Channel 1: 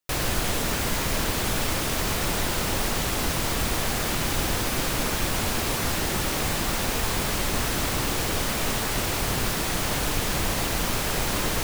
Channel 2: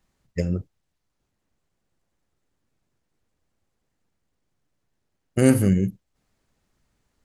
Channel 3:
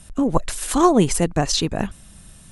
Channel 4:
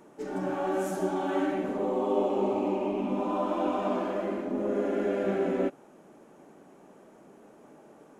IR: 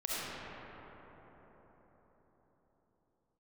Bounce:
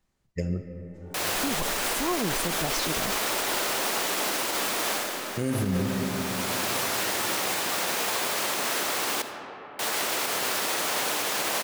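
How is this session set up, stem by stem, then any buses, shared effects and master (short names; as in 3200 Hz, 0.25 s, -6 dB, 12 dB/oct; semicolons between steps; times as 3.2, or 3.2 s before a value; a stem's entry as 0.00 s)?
0.0 dB, 1.05 s, muted 9.22–9.79, send -13 dB, HPF 430 Hz 12 dB/oct; auto duck -19 dB, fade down 0.45 s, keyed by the second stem
-5.0 dB, 0.00 s, send -13 dB, dry
-9.0 dB, 1.25 s, no send, dry
-19.5 dB, 0.75 s, send -6 dB, dry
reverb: on, RT60 4.9 s, pre-delay 25 ms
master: limiter -17.5 dBFS, peak gain reduction 10 dB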